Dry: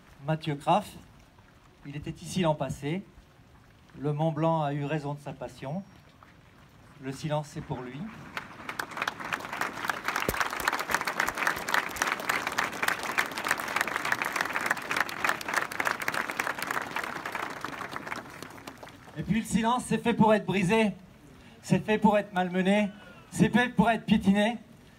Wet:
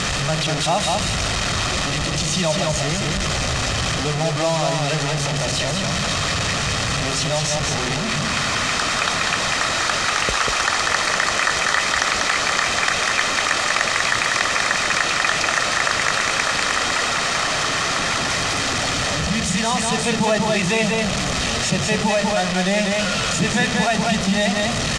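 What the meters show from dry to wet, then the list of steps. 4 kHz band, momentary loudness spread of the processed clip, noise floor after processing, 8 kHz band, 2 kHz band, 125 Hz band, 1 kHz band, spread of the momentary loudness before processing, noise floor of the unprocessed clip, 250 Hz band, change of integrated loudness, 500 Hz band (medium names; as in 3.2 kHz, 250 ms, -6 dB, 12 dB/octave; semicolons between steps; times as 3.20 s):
+19.0 dB, 3 LU, -22 dBFS, +19.0 dB, +11.0 dB, +9.0 dB, +8.5 dB, 15 LU, -56 dBFS, +5.0 dB, +10.0 dB, +8.0 dB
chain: one-bit delta coder 64 kbps, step -25.5 dBFS; low-pass 7.4 kHz 24 dB/octave; treble shelf 2.1 kHz +8 dB; comb 1.6 ms, depth 37%; crackle 51 per s -55 dBFS; delay 194 ms -4 dB; level flattener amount 50%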